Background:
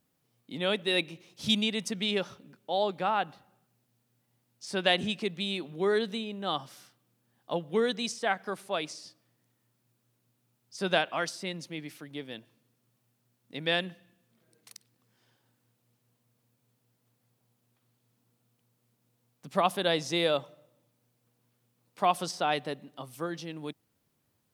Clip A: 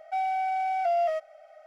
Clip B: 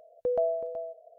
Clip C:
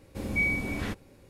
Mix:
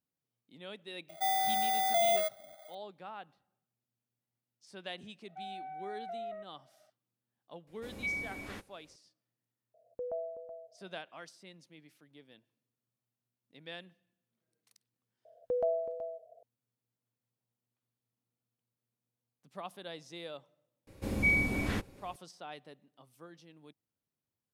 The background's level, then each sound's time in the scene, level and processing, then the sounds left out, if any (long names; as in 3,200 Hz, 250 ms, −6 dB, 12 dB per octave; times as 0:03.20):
background −17.5 dB
0:01.09: mix in A −2.5 dB + samples in bit-reversed order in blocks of 16 samples
0:05.24: mix in A −16 dB + Butterworth low-pass 2,100 Hz
0:07.67: mix in C −8.5 dB + low-shelf EQ 290 Hz −8.5 dB
0:09.74: mix in B −11 dB + low-pass filter 1,400 Hz
0:15.25: mix in B −4 dB
0:20.87: mix in C −0.5 dB